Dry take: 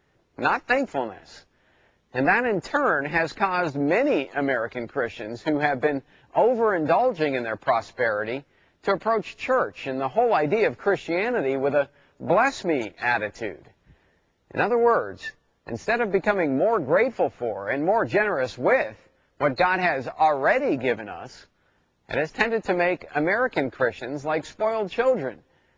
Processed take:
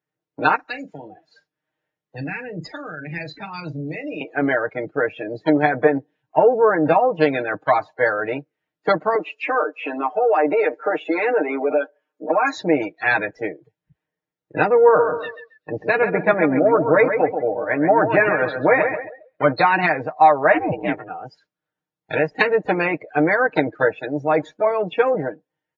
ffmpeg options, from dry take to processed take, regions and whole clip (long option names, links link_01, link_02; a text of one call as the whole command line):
ffmpeg -i in.wav -filter_complex "[0:a]asettb=1/sr,asplit=3[link_01][link_02][link_03];[link_01]atrim=end=0.554[link_04];[link_02]atrim=start=0.55:end=4.21,asetpts=PTS-STARTPTS,afade=type=in:duration=0.004:curve=qsin,afade=type=out:start_time=3.656:duration=0.004:curve=qsin,acrossover=split=160|3000[link_05][link_06][link_07];[link_06]acompressor=threshold=-39dB:ratio=4:attack=3.2:release=140:knee=2.83:detection=peak[link_08];[link_05][link_08][link_07]amix=inputs=3:normalize=0,asplit=2[link_09][link_10];[link_10]adelay=40,volume=-9dB[link_11];[link_09][link_11]amix=inputs=2:normalize=0,atrim=end_sample=161406[link_12];[link_03]atrim=start=4.206[link_13];[link_04][link_12]acrossfade=duration=0.004:curve1=hsin:curve2=qsin[link_14];[link_14][link_13]acrossfade=duration=0.004:curve1=qsin:curve2=hsin,asettb=1/sr,asplit=3[link_15][link_16][link_17];[link_15]atrim=end=9.154[link_18];[link_16]atrim=start=9.15:end=12.55,asetpts=PTS-STARTPTS,afade=type=in:duration=0.004:curve=qsin,afade=type=out:start_time=3.396:duration=0.004:curve=qsin,highpass=frequency=260:width=0.5412,highpass=frequency=260:width=1.3066,aecho=1:1:6.6:0.56,atrim=end_sample=149940,acompressor=threshold=-21dB:ratio=3:attack=3.2:release=140:knee=1:detection=peak[link_19];[link_17]atrim=start=12.546[link_20];[link_18][link_19]acrossfade=duration=0.004:curve1=hsin:curve2=qsin[link_21];[link_21][link_20]acrossfade=duration=0.004:curve1=qsin:curve2=hsin,asettb=1/sr,asplit=3[link_22][link_23][link_24];[link_22]atrim=end=14.754[link_25];[link_23]atrim=start=14.75:end=19.51,asetpts=PTS-STARTPTS,afade=type=in:duration=0.004:curve=qsin,afade=type=out:start_time=4.756:duration=0.004:curve=qsin,lowpass=frequency=4400:width=0.5412,lowpass=frequency=4400:width=1.3066,aecho=1:1:135|270|405|540:0.447|0.165|0.0612|0.0226,atrim=end_sample=209916[link_26];[link_24]atrim=start=19.506[link_27];[link_25][link_26]acrossfade=duration=0.004:curve1=hsin:curve2=qsin[link_28];[link_28][link_27]acrossfade=duration=0.004:curve1=qsin:curve2=hsin,asettb=1/sr,asplit=3[link_29][link_30][link_31];[link_29]atrim=end=20.544[link_32];[link_30]atrim=start=20.54:end=21.09,asetpts=PTS-STARTPTS,afade=type=in:duration=0.004:curve=qsin,afade=type=out:start_time=0.546:duration=0.004:curve=qsin,equalizer=frequency=270:width_type=o:width=0.25:gain=-6.5,aeval=exprs='val(0)*sin(2*PI*200*n/s)':channel_layout=same[link_33];[link_31]atrim=start=21.086[link_34];[link_32][link_33]acrossfade=duration=0.004:curve1=hsin:curve2=qsin[link_35];[link_35][link_34]acrossfade=duration=0.004:curve1=qsin:curve2=hsin,afftdn=noise_reduction=25:noise_floor=-36,highpass=110,aecho=1:1:6.5:0.73,volume=3dB" out.wav